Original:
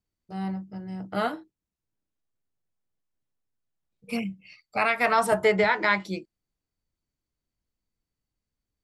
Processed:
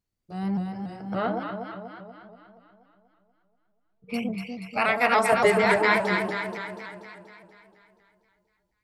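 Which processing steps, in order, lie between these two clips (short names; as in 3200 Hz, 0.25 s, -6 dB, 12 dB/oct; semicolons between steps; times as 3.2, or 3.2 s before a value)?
1.12–4.14 air absorption 260 m; echo with dull and thin repeats by turns 0.12 s, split 830 Hz, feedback 76%, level -2 dB; shaped vibrato saw up 3.5 Hz, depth 100 cents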